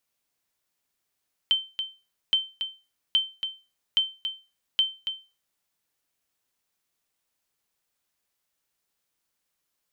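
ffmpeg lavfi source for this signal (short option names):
-f lavfi -i "aevalsrc='0.2*(sin(2*PI*3100*mod(t,0.82))*exp(-6.91*mod(t,0.82)/0.3)+0.376*sin(2*PI*3100*max(mod(t,0.82)-0.28,0))*exp(-6.91*max(mod(t,0.82)-0.28,0)/0.3))':d=4.1:s=44100"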